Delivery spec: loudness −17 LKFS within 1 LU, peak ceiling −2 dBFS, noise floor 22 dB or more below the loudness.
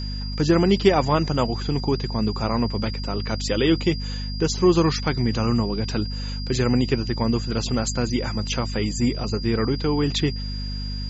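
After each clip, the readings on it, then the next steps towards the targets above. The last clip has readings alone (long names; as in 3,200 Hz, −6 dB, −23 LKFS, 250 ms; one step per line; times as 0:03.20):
mains hum 50 Hz; hum harmonics up to 250 Hz; level of the hum −27 dBFS; interfering tone 4,800 Hz; level of the tone −35 dBFS; integrated loudness −23.0 LKFS; sample peak −4.5 dBFS; target loudness −17.0 LKFS
→ hum removal 50 Hz, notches 5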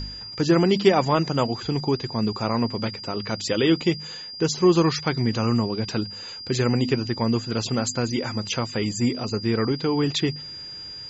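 mains hum none found; interfering tone 4,800 Hz; level of the tone −35 dBFS
→ notch filter 4,800 Hz, Q 30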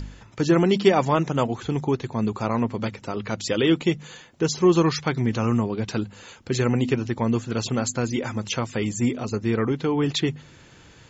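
interfering tone none found; integrated loudness −24.0 LKFS; sample peak −5.5 dBFS; target loudness −17.0 LKFS
→ level +7 dB
brickwall limiter −2 dBFS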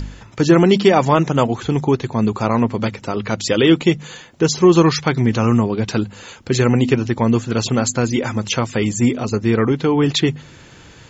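integrated loudness −17.0 LKFS; sample peak −2.0 dBFS; background noise floor −43 dBFS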